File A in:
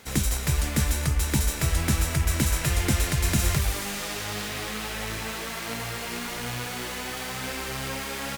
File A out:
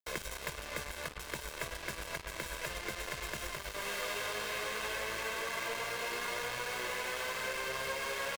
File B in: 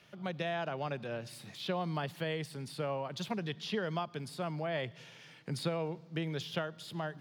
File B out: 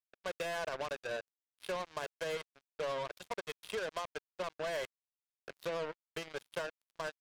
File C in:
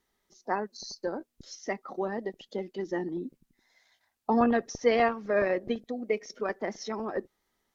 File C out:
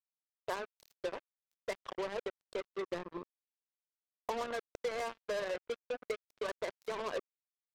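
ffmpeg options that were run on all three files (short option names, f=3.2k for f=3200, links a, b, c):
-af "bass=f=250:g=-8,treble=f=4k:g=-13,aecho=1:1:1.9:0.75,acompressor=threshold=-31dB:ratio=16,equalizer=f=90:t=o:w=1.8:g=-14,acrusher=bits=5:mix=0:aa=0.5,volume=-1.5dB"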